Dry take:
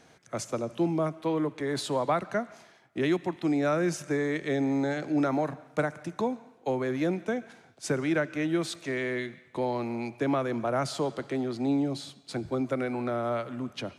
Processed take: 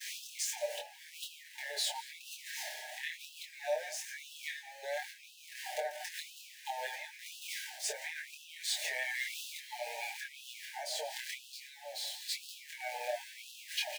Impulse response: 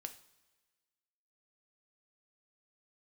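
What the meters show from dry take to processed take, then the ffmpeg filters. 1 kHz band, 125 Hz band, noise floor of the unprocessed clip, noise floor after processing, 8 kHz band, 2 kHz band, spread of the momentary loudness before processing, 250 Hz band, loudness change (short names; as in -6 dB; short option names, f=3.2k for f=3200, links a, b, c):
-10.5 dB, under -40 dB, -59 dBFS, -55 dBFS, +3.5 dB, -3.5 dB, 7 LU, under -40 dB, -9.5 dB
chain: -af "aeval=exprs='val(0)+0.5*0.0224*sgn(val(0))':c=same,equalizer=f=480:t=o:w=0.28:g=-11.5,aecho=1:1:6.6:0.61,agate=range=-33dB:threshold=-33dB:ratio=3:detection=peak,tremolo=f=1.6:d=0.58,aecho=1:1:169:0.106,acompressor=threshold=-35dB:ratio=4,asuperstop=centerf=1200:order=20:qfactor=1.8,flanger=delay=22.5:depth=2.9:speed=1.2,afftfilt=real='re*gte(b*sr/1024,430*pow(2600/430,0.5+0.5*sin(2*PI*0.98*pts/sr)))':imag='im*gte(b*sr/1024,430*pow(2600/430,0.5+0.5*sin(2*PI*0.98*pts/sr)))':win_size=1024:overlap=0.75,volume=7.5dB"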